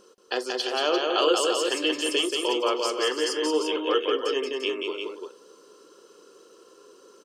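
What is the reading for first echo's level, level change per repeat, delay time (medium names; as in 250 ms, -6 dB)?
-3.5 dB, no regular repeats, 180 ms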